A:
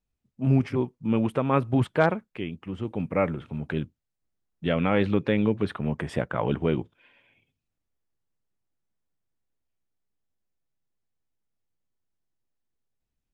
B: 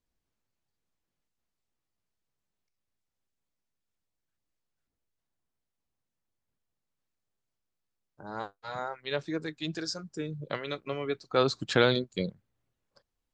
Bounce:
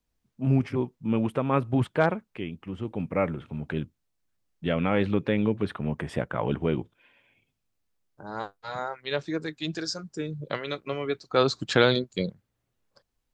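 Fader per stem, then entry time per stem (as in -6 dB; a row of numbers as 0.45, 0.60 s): -1.5, +3.0 dB; 0.00, 0.00 s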